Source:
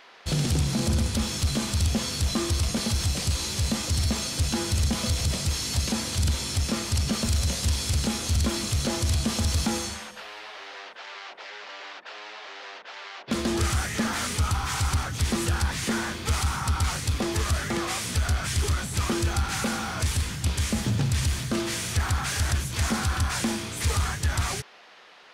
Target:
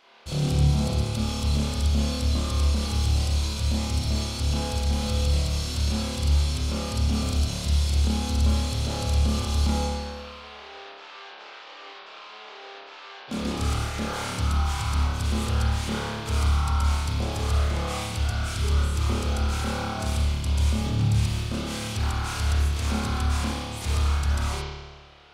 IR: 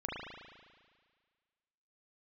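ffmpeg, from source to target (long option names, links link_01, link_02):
-filter_complex "[0:a]equalizer=frequency=1800:width=3.6:gain=-9[link_01];[1:a]atrim=start_sample=2205,asetrate=57330,aresample=44100[link_02];[link_01][link_02]afir=irnorm=-1:irlink=0,volume=-1.5dB"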